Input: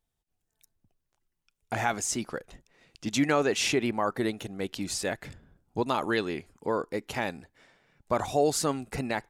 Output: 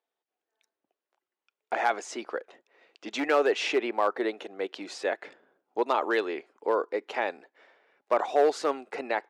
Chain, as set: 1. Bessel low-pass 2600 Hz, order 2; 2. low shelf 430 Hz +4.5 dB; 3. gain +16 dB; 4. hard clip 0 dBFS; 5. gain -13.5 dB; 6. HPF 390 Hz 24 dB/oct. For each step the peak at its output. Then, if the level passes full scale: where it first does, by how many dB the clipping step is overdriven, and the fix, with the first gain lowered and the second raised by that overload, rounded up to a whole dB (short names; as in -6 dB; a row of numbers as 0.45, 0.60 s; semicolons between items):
-12.0, -11.0, +5.0, 0.0, -13.5, -11.5 dBFS; step 3, 5.0 dB; step 3 +11 dB, step 5 -8.5 dB